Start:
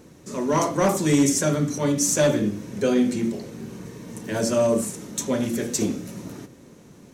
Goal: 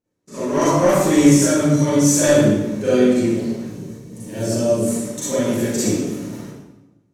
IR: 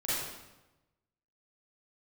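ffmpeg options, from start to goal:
-filter_complex "[0:a]agate=range=-30dB:threshold=-37dB:ratio=16:detection=peak,asettb=1/sr,asplit=3[link_01][link_02][link_03];[link_01]atrim=end=3.654[link_04];[link_02]atrim=start=3.65:end=4.81,asetpts=PTS-STARTPTS,afade=type=in:duration=0.004:curve=qsin,afade=type=out:start_time=1.156:duration=0.004:curve=qsin,equalizer=frequency=1500:width=0.53:gain=-10[link_05];[link_03]atrim=start=4.806[link_06];[link_04][link_05]acrossfade=duration=0.004:curve1=hsin:curve2=qsin[link_07];[link_07][link_06]acrossfade=duration=0.004:curve1=qsin:curve2=hsin[link_08];[1:a]atrim=start_sample=2205[link_09];[link_08][link_09]afir=irnorm=-1:irlink=0,volume=-2dB"

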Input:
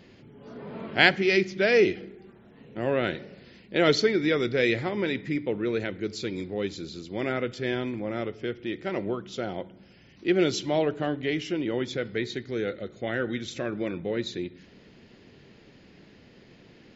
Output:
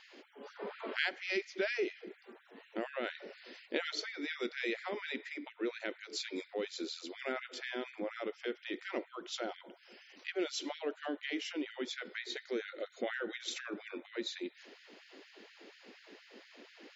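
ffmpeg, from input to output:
ffmpeg -i in.wav -af "acompressor=threshold=-34dB:ratio=4,afftfilt=real='re*gte(b*sr/1024,210*pow(1500/210,0.5+0.5*sin(2*PI*4.2*pts/sr)))':imag='im*gte(b*sr/1024,210*pow(1500/210,0.5+0.5*sin(2*PI*4.2*pts/sr)))':win_size=1024:overlap=0.75,volume=1.5dB" out.wav

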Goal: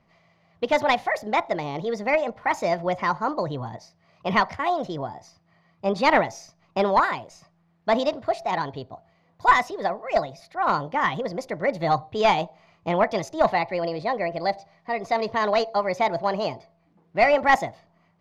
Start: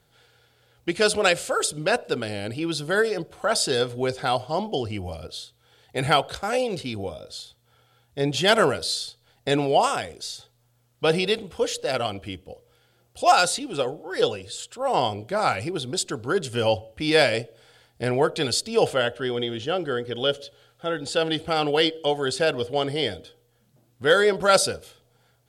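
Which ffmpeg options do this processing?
ffmpeg -i in.wav -af "aeval=exprs='0.422*(cos(1*acos(clip(val(0)/0.422,-1,1)))-cos(1*PI/2))+0.0668*(cos(4*acos(clip(val(0)/0.422,-1,1)))-cos(4*PI/2))+0.0473*(cos(6*acos(clip(val(0)/0.422,-1,1)))-cos(6*PI/2))+0.00841*(cos(8*acos(clip(val(0)/0.422,-1,1)))-cos(8*PI/2))':channel_layout=same,lowpass=1700,asetrate=61740,aresample=44100,volume=1dB" out.wav

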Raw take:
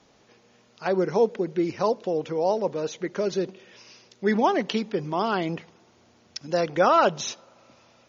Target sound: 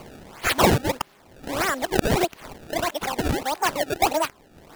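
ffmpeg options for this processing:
ffmpeg -i in.wav -filter_complex "[0:a]areverse,asetrate=74970,aresample=44100,acrossover=split=240|340|1300[link_01][link_02][link_03][link_04];[link_04]acompressor=mode=upward:threshold=-40dB:ratio=2.5[link_05];[link_01][link_02][link_03][link_05]amix=inputs=4:normalize=0,crystalizer=i=2.5:c=0,acrusher=samples=24:mix=1:aa=0.000001:lfo=1:lforange=38.4:lforate=1.6" out.wav

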